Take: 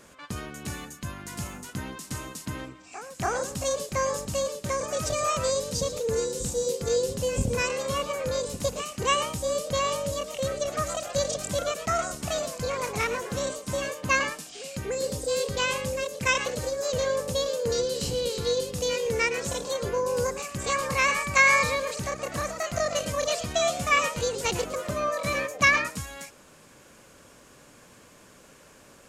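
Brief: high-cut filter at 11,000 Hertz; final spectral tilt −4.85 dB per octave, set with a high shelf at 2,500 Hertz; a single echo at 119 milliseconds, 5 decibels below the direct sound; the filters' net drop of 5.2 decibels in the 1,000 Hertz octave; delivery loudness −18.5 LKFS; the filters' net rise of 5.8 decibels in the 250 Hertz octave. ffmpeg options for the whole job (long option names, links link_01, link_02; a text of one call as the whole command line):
ffmpeg -i in.wav -af "lowpass=11000,equalizer=frequency=250:width_type=o:gain=8,equalizer=frequency=1000:width_type=o:gain=-5,highshelf=frequency=2500:gain=-8,aecho=1:1:119:0.562,volume=9.5dB" out.wav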